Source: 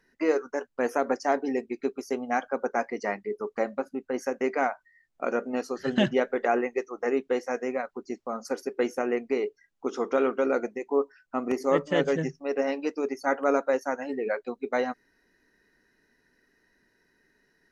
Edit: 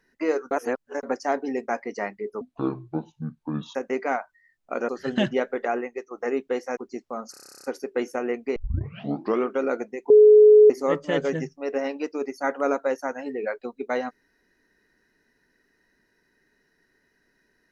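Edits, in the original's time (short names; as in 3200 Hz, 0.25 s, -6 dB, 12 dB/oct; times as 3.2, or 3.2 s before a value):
0.51–1.03 reverse
1.68–2.74 cut
3.47–4.26 speed 59%
5.4–5.69 cut
6.29–6.91 fade out, to -6.5 dB
7.57–7.93 cut
8.47 stutter 0.03 s, 12 plays
9.39 tape start 0.91 s
10.93–11.53 bleep 424 Hz -8.5 dBFS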